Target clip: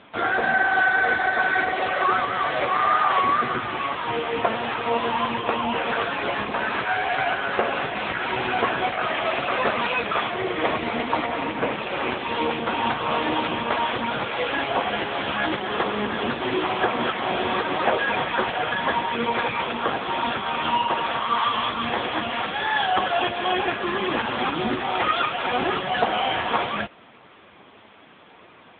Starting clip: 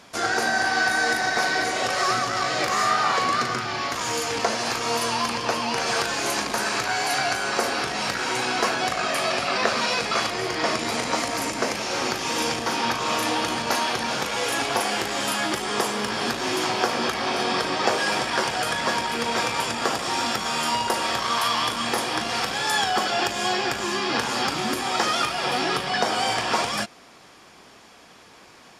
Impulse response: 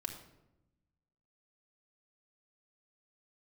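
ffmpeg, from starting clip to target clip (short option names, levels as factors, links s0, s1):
-af "volume=1.68" -ar 8000 -c:a libopencore_amrnb -b:a 6700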